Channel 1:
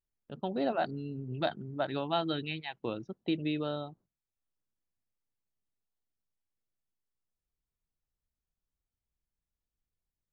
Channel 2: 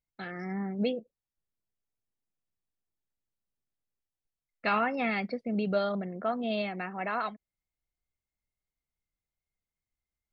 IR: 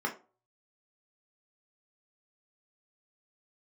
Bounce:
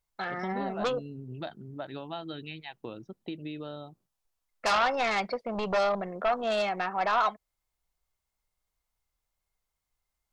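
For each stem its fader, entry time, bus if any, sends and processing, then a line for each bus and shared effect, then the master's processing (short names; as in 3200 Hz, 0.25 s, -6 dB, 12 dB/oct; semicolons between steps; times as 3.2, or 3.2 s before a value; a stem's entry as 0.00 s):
-1.5 dB, 0.00 s, no send, compressor 2.5:1, threshold -35 dBFS, peak gain reduction 7.5 dB
-5.5 dB, 0.00 s, no send, sine folder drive 9 dB, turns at -16 dBFS; graphic EQ 125/250/1000/2000 Hz -9/-11/+6/-4 dB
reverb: off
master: dry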